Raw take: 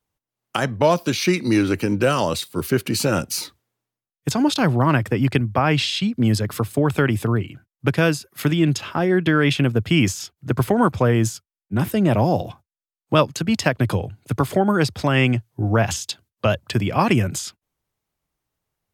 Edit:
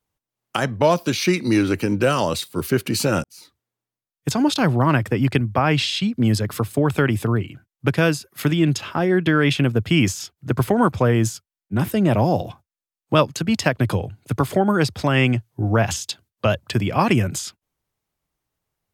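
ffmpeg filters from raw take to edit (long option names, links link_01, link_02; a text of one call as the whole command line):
ffmpeg -i in.wav -filter_complex "[0:a]asplit=2[link_01][link_02];[link_01]atrim=end=3.24,asetpts=PTS-STARTPTS,afade=type=out:start_time=3.236:duration=0.004:curve=hsin[link_03];[link_02]atrim=start=3.24,asetpts=PTS-STARTPTS,afade=type=in:duration=1.06[link_04];[link_03][link_04]concat=n=2:v=0:a=1" out.wav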